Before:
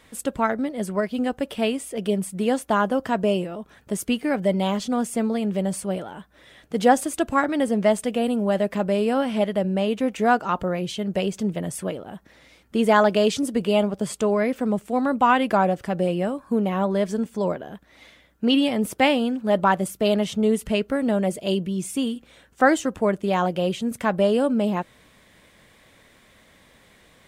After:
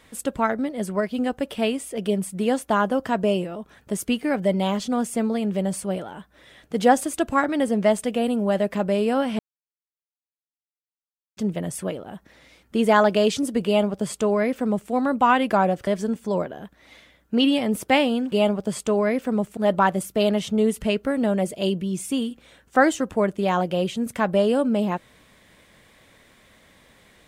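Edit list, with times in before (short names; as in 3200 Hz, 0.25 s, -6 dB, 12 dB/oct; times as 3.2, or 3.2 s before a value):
9.39–11.37 mute
13.66–14.91 copy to 19.42
15.87–16.97 cut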